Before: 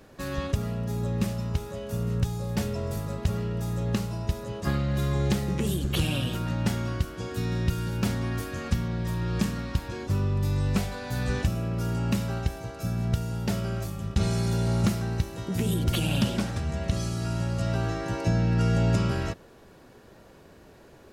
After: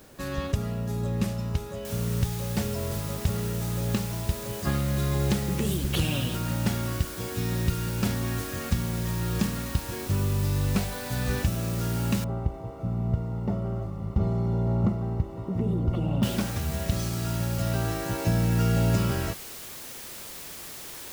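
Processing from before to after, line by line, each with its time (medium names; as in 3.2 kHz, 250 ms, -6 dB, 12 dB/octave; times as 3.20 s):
1.85 s: noise floor step -58 dB -41 dB
12.24–16.23 s: Savitzky-Golay filter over 65 samples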